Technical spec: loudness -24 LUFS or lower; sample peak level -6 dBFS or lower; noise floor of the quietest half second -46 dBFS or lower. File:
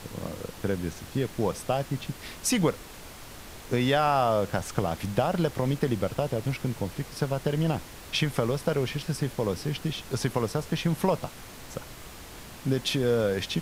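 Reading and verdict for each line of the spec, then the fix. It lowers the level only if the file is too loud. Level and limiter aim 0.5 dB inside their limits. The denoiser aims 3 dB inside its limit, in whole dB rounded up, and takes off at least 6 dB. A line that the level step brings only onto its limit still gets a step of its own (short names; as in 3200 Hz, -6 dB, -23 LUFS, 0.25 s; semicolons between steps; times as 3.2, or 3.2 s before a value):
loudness -28.5 LUFS: OK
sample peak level -8.5 dBFS: OK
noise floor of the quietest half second -44 dBFS: fail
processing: denoiser 6 dB, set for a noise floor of -44 dBFS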